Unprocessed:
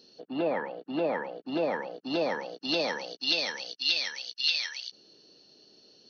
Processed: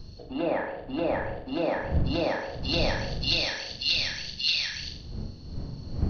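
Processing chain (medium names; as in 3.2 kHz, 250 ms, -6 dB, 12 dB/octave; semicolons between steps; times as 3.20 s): wind noise 120 Hz -35 dBFS; hum notches 50/100/150/200/250/300/350/400/450/500 Hz; flutter echo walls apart 7.2 m, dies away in 0.55 s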